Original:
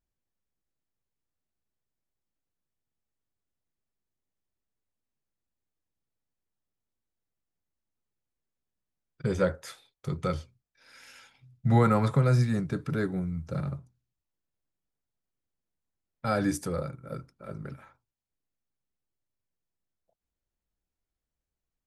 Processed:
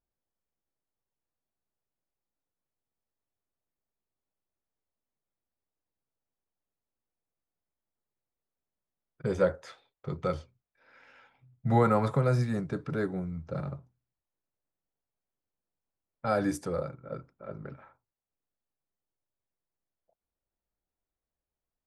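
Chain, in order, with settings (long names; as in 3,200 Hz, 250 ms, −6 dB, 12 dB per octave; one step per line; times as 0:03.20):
low-pass that shuts in the quiet parts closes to 2,100 Hz, open at −23.5 dBFS
parametric band 660 Hz +7 dB 2.2 octaves
level −5 dB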